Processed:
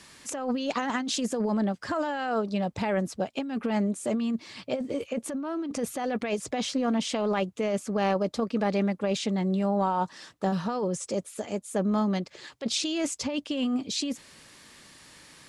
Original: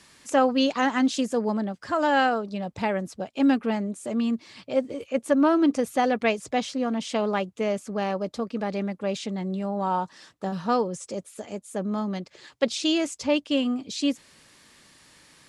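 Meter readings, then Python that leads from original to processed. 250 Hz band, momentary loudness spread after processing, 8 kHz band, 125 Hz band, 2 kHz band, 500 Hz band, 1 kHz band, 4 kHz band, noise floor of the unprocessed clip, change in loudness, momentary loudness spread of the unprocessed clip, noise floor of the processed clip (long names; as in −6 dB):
−3.0 dB, 7 LU, +2.5 dB, +2.5 dB, −5.5 dB, −3.0 dB, −4.5 dB, −2.0 dB, −58 dBFS, −3.0 dB, 11 LU, −55 dBFS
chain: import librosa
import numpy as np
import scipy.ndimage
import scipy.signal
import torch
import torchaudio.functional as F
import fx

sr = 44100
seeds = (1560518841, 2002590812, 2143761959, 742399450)

y = fx.over_compress(x, sr, threshold_db=-27.0, ratio=-1.0)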